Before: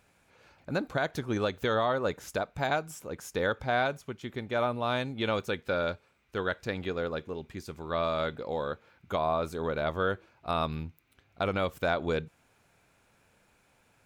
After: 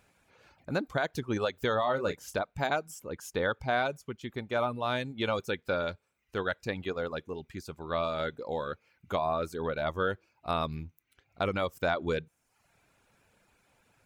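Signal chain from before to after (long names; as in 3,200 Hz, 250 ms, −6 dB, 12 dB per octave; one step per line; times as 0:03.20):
reverb reduction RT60 0.69 s
0:01.83–0:02.39: double-tracking delay 29 ms −8.5 dB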